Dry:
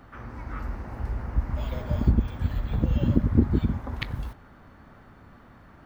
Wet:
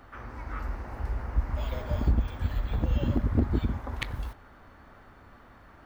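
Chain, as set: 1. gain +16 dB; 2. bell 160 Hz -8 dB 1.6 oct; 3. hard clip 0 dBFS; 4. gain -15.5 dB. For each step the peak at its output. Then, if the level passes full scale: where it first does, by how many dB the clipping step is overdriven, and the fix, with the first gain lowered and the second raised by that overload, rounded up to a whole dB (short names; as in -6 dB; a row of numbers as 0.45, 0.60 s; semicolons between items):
+11.0, +7.5, 0.0, -15.5 dBFS; step 1, 7.5 dB; step 1 +8 dB, step 4 -7.5 dB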